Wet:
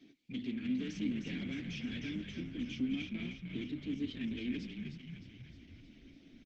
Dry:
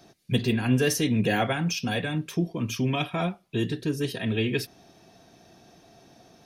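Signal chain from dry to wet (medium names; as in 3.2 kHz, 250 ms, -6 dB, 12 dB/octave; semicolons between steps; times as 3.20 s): in parallel at 0 dB: compression 6:1, threshold -36 dBFS, peak gain reduction 17.5 dB; on the sum: saturation -25.5 dBFS, distortion -9 dB; vowel filter i; frequency-shifting echo 308 ms, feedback 60%, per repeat -40 Hz, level -6 dB; trim +1 dB; Opus 12 kbps 48 kHz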